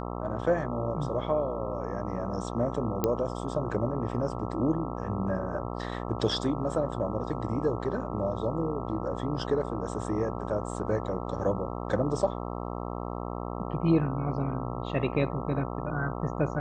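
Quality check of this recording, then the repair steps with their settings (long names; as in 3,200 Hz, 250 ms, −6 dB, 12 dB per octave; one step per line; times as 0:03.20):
mains buzz 60 Hz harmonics 22 −35 dBFS
0:03.04: click −12 dBFS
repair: click removal
hum removal 60 Hz, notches 22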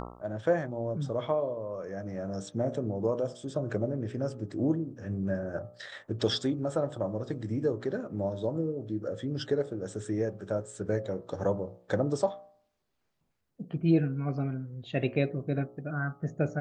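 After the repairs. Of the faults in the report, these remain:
none of them is left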